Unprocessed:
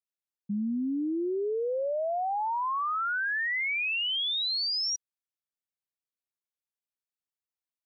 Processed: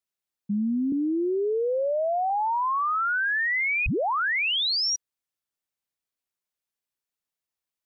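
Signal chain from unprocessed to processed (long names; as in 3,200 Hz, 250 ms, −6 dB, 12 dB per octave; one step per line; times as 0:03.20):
0:00.92–0:02.30: high-pass filter 180 Hz 24 dB per octave
0:03.86: tape start 0.97 s
level +4.5 dB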